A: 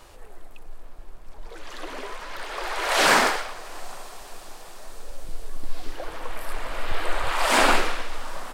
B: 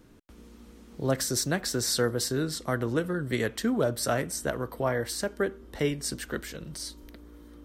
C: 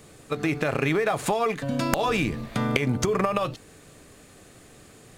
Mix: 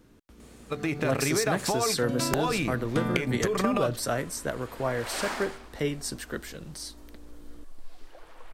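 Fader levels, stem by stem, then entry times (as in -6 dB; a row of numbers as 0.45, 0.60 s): -15.5, -1.5, -4.0 dB; 2.15, 0.00, 0.40 s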